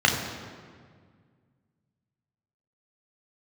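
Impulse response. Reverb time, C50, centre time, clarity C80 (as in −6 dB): 1.8 s, 5.0 dB, 49 ms, 6.5 dB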